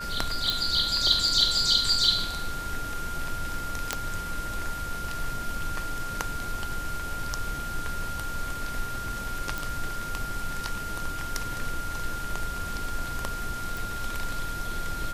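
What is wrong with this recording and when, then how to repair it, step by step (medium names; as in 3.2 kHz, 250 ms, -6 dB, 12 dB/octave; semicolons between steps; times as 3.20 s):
whine 1.4 kHz -34 dBFS
0.50 s: pop
3.93 s: pop -9 dBFS
9.58 s: pop
13.77 s: pop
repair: de-click; band-stop 1.4 kHz, Q 30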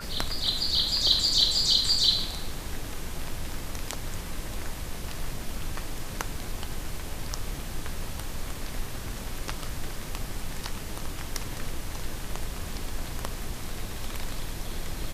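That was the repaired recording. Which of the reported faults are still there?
nothing left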